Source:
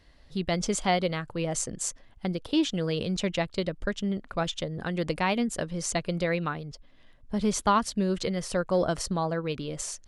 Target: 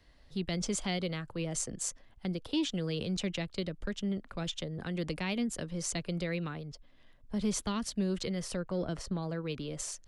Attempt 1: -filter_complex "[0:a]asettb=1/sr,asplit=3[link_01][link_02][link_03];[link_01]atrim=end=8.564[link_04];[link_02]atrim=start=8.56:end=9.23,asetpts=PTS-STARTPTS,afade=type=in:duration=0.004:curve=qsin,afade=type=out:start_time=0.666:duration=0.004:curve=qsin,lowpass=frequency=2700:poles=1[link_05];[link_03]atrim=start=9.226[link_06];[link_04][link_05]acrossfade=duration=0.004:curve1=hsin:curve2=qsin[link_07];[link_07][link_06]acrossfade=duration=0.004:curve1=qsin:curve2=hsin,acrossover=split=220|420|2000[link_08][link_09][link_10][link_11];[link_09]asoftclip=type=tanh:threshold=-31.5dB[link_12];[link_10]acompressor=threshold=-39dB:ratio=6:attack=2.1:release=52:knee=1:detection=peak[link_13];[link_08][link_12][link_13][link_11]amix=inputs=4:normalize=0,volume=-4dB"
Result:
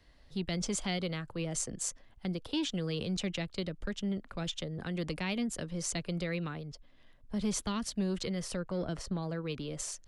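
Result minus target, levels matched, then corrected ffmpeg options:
soft clipping: distortion +7 dB
-filter_complex "[0:a]asettb=1/sr,asplit=3[link_01][link_02][link_03];[link_01]atrim=end=8.564[link_04];[link_02]atrim=start=8.56:end=9.23,asetpts=PTS-STARTPTS,afade=type=in:duration=0.004:curve=qsin,afade=type=out:start_time=0.666:duration=0.004:curve=qsin,lowpass=frequency=2700:poles=1[link_05];[link_03]atrim=start=9.226[link_06];[link_04][link_05]acrossfade=duration=0.004:curve1=hsin:curve2=qsin[link_07];[link_07][link_06]acrossfade=duration=0.004:curve1=qsin:curve2=hsin,acrossover=split=220|420|2000[link_08][link_09][link_10][link_11];[link_09]asoftclip=type=tanh:threshold=-25dB[link_12];[link_10]acompressor=threshold=-39dB:ratio=6:attack=2.1:release=52:knee=1:detection=peak[link_13];[link_08][link_12][link_13][link_11]amix=inputs=4:normalize=0,volume=-4dB"

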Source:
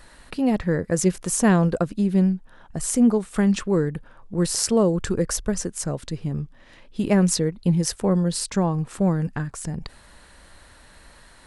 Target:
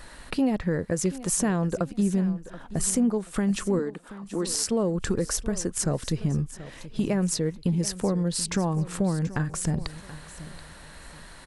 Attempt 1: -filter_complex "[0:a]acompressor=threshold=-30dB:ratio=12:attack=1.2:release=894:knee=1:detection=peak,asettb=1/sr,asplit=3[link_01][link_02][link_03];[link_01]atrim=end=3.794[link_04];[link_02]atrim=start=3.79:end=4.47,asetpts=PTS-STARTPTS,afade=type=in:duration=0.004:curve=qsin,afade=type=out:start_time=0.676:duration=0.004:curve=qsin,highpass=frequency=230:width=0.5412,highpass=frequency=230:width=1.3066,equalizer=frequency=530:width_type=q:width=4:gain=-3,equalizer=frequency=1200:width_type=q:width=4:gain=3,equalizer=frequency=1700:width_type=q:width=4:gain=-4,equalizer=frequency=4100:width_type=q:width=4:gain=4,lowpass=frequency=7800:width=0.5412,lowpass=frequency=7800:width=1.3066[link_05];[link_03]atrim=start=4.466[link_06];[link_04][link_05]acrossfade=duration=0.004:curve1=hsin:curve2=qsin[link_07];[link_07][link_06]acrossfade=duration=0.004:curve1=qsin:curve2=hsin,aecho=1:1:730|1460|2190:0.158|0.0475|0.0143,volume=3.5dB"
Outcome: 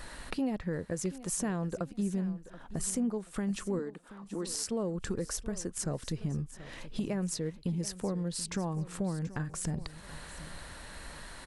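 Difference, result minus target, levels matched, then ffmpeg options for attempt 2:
downward compressor: peak gain reduction +8 dB
-filter_complex "[0:a]acompressor=threshold=-21dB:ratio=12:attack=1.2:release=894:knee=1:detection=peak,asettb=1/sr,asplit=3[link_01][link_02][link_03];[link_01]atrim=end=3.794[link_04];[link_02]atrim=start=3.79:end=4.47,asetpts=PTS-STARTPTS,afade=type=in:duration=0.004:curve=qsin,afade=type=out:start_time=0.676:duration=0.004:curve=qsin,highpass=frequency=230:width=0.5412,highpass=frequency=230:width=1.3066,equalizer=frequency=530:width_type=q:width=4:gain=-3,equalizer=frequency=1200:width_type=q:width=4:gain=3,equalizer=frequency=1700:width_type=q:width=4:gain=-4,equalizer=frequency=4100:width_type=q:width=4:gain=4,lowpass=frequency=7800:width=0.5412,lowpass=frequency=7800:width=1.3066[link_05];[link_03]atrim=start=4.466[link_06];[link_04][link_05]acrossfade=duration=0.004:curve1=hsin:curve2=qsin[link_07];[link_07][link_06]acrossfade=duration=0.004:curve1=qsin:curve2=hsin,aecho=1:1:730|1460|2190:0.158|0.0475|0.0143,volume=3.5dB"

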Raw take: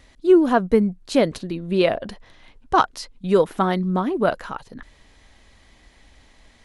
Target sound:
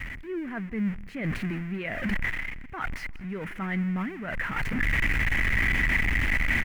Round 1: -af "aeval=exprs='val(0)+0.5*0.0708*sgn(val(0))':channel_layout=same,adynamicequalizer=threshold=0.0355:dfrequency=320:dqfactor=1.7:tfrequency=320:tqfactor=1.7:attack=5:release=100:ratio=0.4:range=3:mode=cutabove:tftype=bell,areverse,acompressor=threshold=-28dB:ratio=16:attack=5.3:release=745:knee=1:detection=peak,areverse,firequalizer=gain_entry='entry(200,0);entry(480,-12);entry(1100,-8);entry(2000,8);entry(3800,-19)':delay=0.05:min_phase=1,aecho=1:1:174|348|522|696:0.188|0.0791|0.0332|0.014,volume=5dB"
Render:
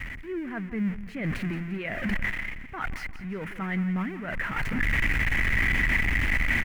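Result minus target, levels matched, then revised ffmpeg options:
echo-to-direct +9 dB
-af "aeval=exprs='val(0)+0.5*0.0708*sgn(val(0))':channel_layout=same,adynamicequalizer=threshold=0.0355:dfrequency=320:dqfactor=1.7:tfrequency=320:tqfactor=1.7:attack=5:release=100:ratio=0.4:range=3:mode=cutabove:tftype=bell,areverse,acompressor=threshold=-28dB:ratio=16:attack=5.3:release=745:knee=1:detection=peak,areverse,firequalizer=gain_entry='entry(200,0);entry(480,-12);entry(1100,-8);entry(2000,8);entry(3800,-19)':delay=0.05:min_phase=1,aecho=1:1:174|348|522:0.0668|0.0281|0.0118,volume=5dB"

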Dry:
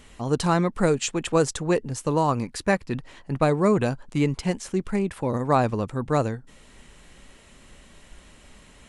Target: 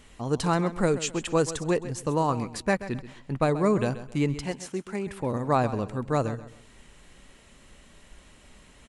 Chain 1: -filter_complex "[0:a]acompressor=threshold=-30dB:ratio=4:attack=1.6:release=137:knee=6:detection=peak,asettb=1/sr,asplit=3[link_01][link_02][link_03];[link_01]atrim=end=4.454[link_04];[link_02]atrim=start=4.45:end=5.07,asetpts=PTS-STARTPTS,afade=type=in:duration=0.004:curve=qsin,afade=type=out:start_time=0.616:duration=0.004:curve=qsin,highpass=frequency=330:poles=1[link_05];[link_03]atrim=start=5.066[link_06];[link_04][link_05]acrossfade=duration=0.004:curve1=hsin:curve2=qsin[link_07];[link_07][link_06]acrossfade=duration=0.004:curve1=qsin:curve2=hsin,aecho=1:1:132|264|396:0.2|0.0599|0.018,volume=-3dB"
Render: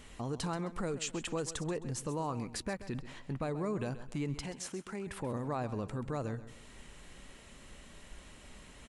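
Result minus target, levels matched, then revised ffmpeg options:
downward compressor: peak gain reduction +14.5 dB
-filter_complex "[0:a]asettb=1/sr,asplit=3[link_01][link_02][link_03];[link_01]atrim=end=4.454[link_04];[link_02]atrim=start=4.45:end=5.07,asetpts=PTS-STARTPTS,afade=type=in:duration=0.004:curve=qsin,afade=type=out:start_time=0.616:duration=0.004:curve=qsin,highpass=frequency=330:poles=1[link_05];[link_03]atrim=start=5.066[link_06];[link_04][link_05]acrossfade=duration=0.004:curve1=hsin:curve2=qsin[link_07];[link_07][link_06]acrossfade=duration=0.004:curve1=qsin:curve2=hsin,aecho=1:1:132|264|396:0.2|0.0599|0.018,volume=-3dB"

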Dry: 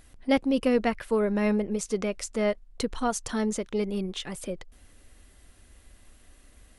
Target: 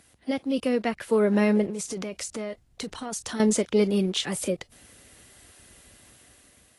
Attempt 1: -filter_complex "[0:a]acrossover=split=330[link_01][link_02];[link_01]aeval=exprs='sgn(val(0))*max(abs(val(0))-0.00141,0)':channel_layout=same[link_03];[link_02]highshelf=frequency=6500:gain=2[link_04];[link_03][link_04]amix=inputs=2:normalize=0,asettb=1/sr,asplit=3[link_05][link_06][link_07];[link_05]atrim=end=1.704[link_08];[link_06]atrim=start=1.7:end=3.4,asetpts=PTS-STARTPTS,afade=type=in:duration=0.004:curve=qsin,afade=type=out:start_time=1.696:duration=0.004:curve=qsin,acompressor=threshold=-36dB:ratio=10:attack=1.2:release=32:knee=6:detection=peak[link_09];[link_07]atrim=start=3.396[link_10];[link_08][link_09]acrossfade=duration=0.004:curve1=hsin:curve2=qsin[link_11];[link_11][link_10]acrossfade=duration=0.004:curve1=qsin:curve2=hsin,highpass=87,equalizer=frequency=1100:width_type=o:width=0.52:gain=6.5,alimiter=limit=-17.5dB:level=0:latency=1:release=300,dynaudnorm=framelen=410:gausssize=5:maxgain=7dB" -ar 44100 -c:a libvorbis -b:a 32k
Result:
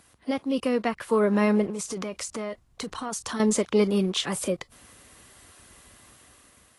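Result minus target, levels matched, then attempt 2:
1,000 Hz band +3.5 dB
-filter_complex "[0:a]acrossover=split=330[link_01][link_02];[link_01]aeval=exprs='sgn(val(0))*max(abs(val(0))-0.00141,0)':channel_layout=same[link_03];[link_02]highshelf=frequency=6500:gain=2[link_04];[link_03][link_04]amix=inputs=2:normalize=0,asettb=1/sr,asplit=3[link_05][link_06][link_07];[link_05]atrim=end=1.704[link_08];[link_06]atrim=start=1.7:end=3.4,asetpts=PTS-STARTPTS,afade=type=in:duration=0.004:curve=qsin,afade=type=out:start_time=1.696:duration=0.004:curve=qsin,acompressor=threshold=-36dB:ratio=10:attack=1.2:release=32:knee=6:detection=peak[link_09];[link_07]atrim=start=3.396[link_10];[link_08][link_09]acrossfade=duration=0.004:curve1=hsin:curve2=qsin[link_11];[link_11][link_10]acrossfade=duration=0.004:curve1=qsin:curve2=hsin,highpass=87,equalizer=frequency=1100:width_type=o:width=0.52:gain=-2,alimiter=limit=-17.5dB:level=0:latency=1:release=300,dynaudnorm=framelen=410:gausssize=5:maxgain=7dB" -ar 44100 -c:a libvorbis -b:a 32k

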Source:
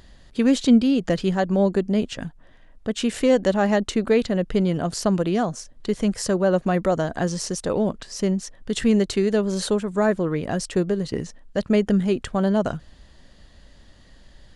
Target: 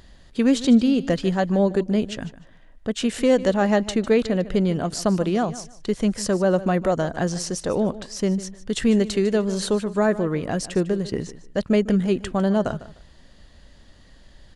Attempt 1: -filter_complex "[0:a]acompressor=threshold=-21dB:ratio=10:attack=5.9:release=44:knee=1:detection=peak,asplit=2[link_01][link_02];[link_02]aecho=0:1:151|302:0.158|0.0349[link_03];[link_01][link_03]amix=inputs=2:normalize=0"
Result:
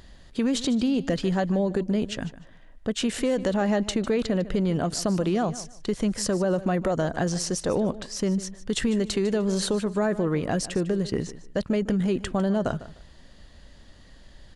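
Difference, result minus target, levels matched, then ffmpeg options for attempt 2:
downward compressor: peak gain reduction +10.5 dB
-filter_complex "[0:a]asplit=2[link_01][link_02];[link_02]aecho=0:1:151|302:0.158|0.0349[link_03];[link_01][link_03]amix=inputs=2:normalize=0"

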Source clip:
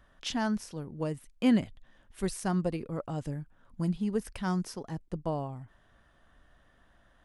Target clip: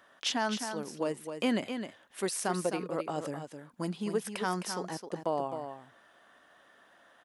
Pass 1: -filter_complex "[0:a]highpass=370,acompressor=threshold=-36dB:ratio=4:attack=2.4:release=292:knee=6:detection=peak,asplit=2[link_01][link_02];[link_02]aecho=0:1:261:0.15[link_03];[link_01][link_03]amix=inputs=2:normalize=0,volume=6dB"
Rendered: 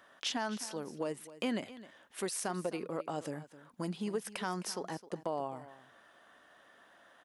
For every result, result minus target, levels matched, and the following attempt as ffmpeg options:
echo-to-direct −8.5 dB; downward compressor: peak gain reduction +5.5 dB
-filter_complex "[0:a]highpass=370,acompressor=threshold=-36dB:ratio=4:attack=2.4:release=292:knee=6:detection=peak,asplit=2[link_01][link_02];[link_02]aecho=0:1:261:0.398[link_03];[link_01][link_03]amix=inputs=2:normalize=0,volume=6dB"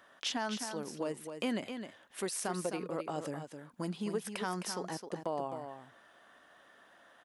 downward compressor: peak gain reduction +5.5 dB
-filter_complex "[0:a]highpass=370,acompressor=threshold=-28.5dB:ratio=4:attack=2.4:release=292:knee=6:detection=peak,asplit=2[link_01][link_02];[link_02]aecho=0:1:261:0.398[link_03];[link_01][link_03]amix=inputs=2:normalize=0,volume=6dB"

